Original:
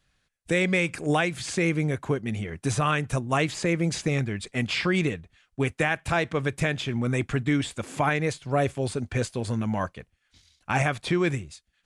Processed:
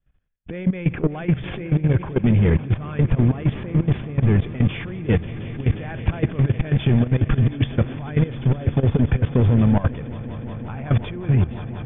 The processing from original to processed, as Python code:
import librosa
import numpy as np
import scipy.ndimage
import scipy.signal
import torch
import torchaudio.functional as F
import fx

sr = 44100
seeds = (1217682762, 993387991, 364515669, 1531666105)

p1 = fx.over_compress(x, sr, threshold_db=-29.0, ratio=-0.5)
p2 = fx.leveller(p1, sr, passes=3)
p3 = scipy.signal.sosfilt(scipy.signal.cheby1(10, 1.0, 3500.0, 'lowpass', fs=sr, output='sos'), p2)
p4 = fx.tilt_eq(p3, sr, slope=-3.0)
p5 = p4 + fx.echo_swell(p4, sr, ms=179, loudest=5, wet_db=-16.0, dry=0)
y = fx.level_steps(p5, sr, step_db=15)